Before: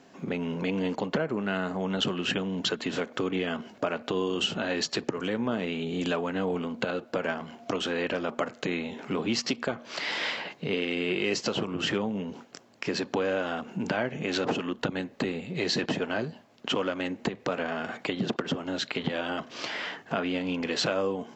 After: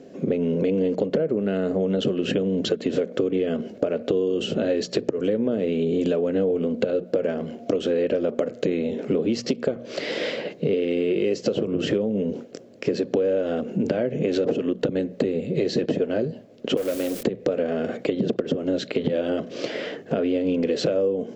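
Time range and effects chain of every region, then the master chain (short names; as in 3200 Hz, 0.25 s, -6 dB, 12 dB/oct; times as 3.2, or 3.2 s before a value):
16.77–17.23 low shelf 150 Hz -10.5 dB + requantised 6-bit, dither triangular + core saturation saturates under 2000 Hz
whole clip: resonant low shelf 690 Hz +9.5 dB, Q 3; notches 60/120/180 Hz; compressor, threshold -19 dBFS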